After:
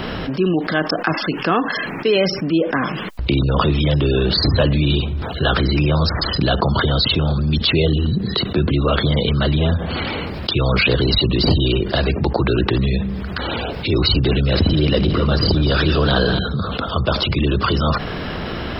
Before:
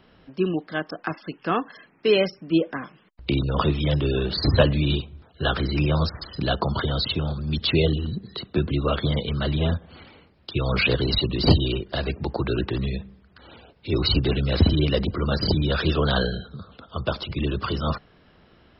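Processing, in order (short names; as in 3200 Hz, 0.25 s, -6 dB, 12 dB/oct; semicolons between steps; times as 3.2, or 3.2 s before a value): 14.3–16.39 regenerating reverse delay 0.129 s, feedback 75%, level -12 dB; fast leveller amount 70%; gain -1 dB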